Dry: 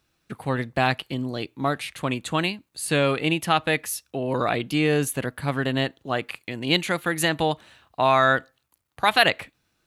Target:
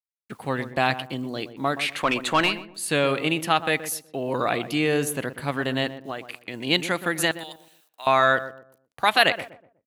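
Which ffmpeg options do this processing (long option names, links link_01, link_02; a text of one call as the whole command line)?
ffmpeg -i in.wav -filter_complex "[0:a]lowshelf=frequency=110:gain=-12,asettb=1/sr,asplit=3[link_01][link_02][link_03];[link_01]atrim=end=1.774[link_04];[link_02]atrim=start=1.77:end=2.66,asetpts=PTS-STARTPTS,afade=type=in:duration=0.004:curve=qsin,afade=type=out:start_time=0.886:duration=0.004:curve=qsin,asplit=2[link_05][link_06];[link_06]highpass=frequency=720:poles=1,volume=17dB,asoftclip=type=tanh:threshold=-9.5dB[link_07];[link_05][link_07]amix=inputs=2:normalize=0,lowpass=frequency=2900:poles=1,volume=-6dB[link_08];[link_03]atrim=start=2.656[link_09];[link_04][link_08]acrossfade=duration=0.004:curve1=hsin:curve2=qsin[link_10];[link_10][link_09]acrossfade=duration=0.004:curve1=qsin:curve2=hsin,asettb=1/sr,asplit=3[link_11][link_12][link_13];[link_11]atrim=end=5.984[link_14];[link_12]atrim=start=5.98:end=6.54,asetpts=PTS-STARTPTS,afade=type=in:duration=0.004:curve=qsin,afade=type=out:start_time=0.556:duration=0.004:curve=qsin,acompressor=threshold=-29dB:ratio=6[link_15];[link_13]atrim=start=6.536[link_16];[link_14][link_15]acrossfade=duration=0.004:curve1=hsin:curve2=qsin[link_17];[link_17][link_16]acrossfade=duration=0.004:curve1=qsin:curve2=hsin,acrusher=bits=9:mix=0:aa=0.000001,asettb=1/sr,asplit=3[link_18][link_19][link_20];[link_18]atrim=end=7.314[link_21];[link_19]atrim=start=7.31:end=8.07,asetpts=PTS-STARTPTS,afade=type=in:duration=0.004:curve=qsin,afade=type=out:start_time=0.756:duration=0.004:curve=qsin,aderivative[link_22];[link_20]atrim=start=8.066[link_23];[link_21][link_22]acrossfade=duration=0.004:curve1=hsin:curve2=qsin[link_24];[link_24][link_23]acrossfade=duration=0.004:curve1=qsin:curve2=hsin,asplit=2[link_25][link_26];[link_26]adelay=123,lowpass=frequency=1000:poles=1,volume=-11dB,asplit=2[link_27][link_28];[link_28]adelay=123,lowpass=frequency=1000:poles=1,volume=0.35,asplit=2[link_29][link_30];[link_30]adelay=123,lowpass=frequency=1000:poles=1,volume=0.35,asplit=2[link_31][link_32];[link_32]adelay=123,lowpass=frequency=1000:poles=1,volume=0.35[link_33];[link_27][link_29][link_31][link_33]amix=inputs=4:normalize=0[link_34];[link_25][link_34]amix=inputs=2:normalize=0" out.wav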